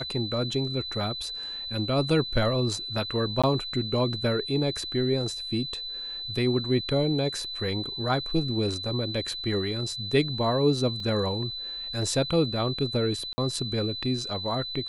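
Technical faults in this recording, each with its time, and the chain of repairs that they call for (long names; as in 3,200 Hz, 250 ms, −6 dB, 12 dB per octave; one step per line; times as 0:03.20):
whistle 4,000 Hz −33 dBFS
0:03.42–0:03.44: drop-out 16 ms
0:11.00: drop-out 2.2 ms
0:13.33–0:13.38: drop-out 50 ms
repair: notch filter 4,000 Hz, Q 30
repair the gap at 0:03.42, 16 ms
repair the gap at 0:11.00, 2.2 ms
repair the gap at 0:13.33, 50 ms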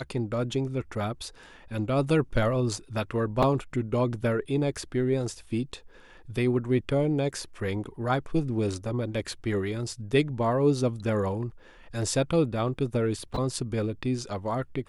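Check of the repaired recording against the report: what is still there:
none of them is left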